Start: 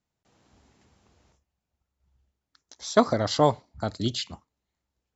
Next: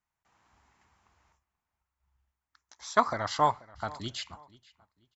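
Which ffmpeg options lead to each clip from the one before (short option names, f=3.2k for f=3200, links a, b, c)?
-filter_complex "[0:a]equalizer=f=125:t=o:w=1:g=-5,equalizer=f=250:t=o:w=1:g=-6,equalizer=f=500:t=o:w=1:g=-8,equalizer=f=1k:t=o:w=1:g=9,equalizer=f=2k:t=o:w=1:g=5,equalizer=f=4k:t=o:w=1:g=-4,asplit=2[a][b];[b]adelay=484,lowpass=f=4.6k:p=1,volume=-21dB,asplit=2[c][d];[d]adelay=484,lowpass=f=4.6k:p=1,volume=0.31[e];[a][c][e]amix=inputs=3:normalize=0,volume=-5dB"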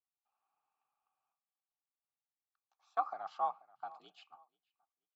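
-filter_complex "[0:a]asplit=3[a][b][c];[a]bandpass=f=730:t=q:w=8,volume=0dB[d];[b]bandpass=f=1.09k:t=q:w=8,volume=-6dB[e];[c]bandpass=f=2.44k:t=q:w=8,volume=-9dB[f];[d][e][f]amix=inputs=3:normalize=0,afreqshift=59,agate=range=-6dB:threshold=-58dB:ratio=16:detection=peak,volume=-3dB"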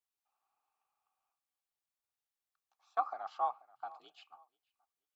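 -af "equalizer=f=190:w=2.2:g=-12,volume=1dB"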